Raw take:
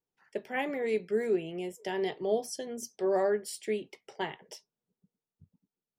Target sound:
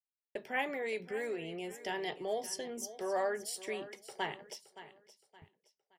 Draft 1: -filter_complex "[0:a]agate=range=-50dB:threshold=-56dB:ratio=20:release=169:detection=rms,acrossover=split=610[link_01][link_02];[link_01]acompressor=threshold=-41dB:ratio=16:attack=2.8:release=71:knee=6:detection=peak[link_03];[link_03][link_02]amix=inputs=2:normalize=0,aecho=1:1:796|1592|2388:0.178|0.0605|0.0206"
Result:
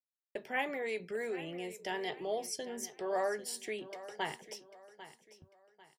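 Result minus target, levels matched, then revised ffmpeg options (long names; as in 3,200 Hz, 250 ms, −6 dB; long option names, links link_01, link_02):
echo 226 ms late
-filter_complex "[0:a]agate=range=-50dB:threshold=-56dB:ratio=20:release=169:detection=rms,acrossover=split=610[link_01][link_02];[link_01]acompressor=threshold=-41dB:ratio=16:attack=2.8:release=71:knee=6:detection=peak[link_03];[link_03][link_02]amix=inputs=2:normalize=0,aecho=1:1:570|1140|1710:0.178|0.0605|0.0206"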